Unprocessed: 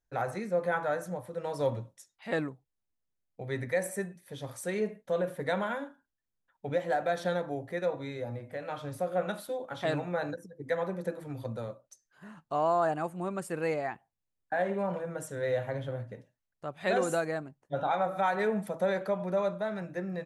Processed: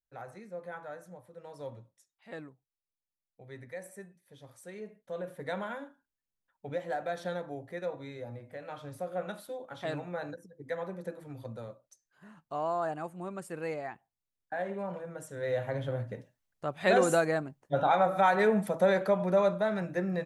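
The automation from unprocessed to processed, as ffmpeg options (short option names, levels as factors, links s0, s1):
-af "volume=1.58,afade=t=in:st=4.85:d=0.69:silence=0.421697,afade=t=in:st=15.28:d=0.86:silence=0.354813"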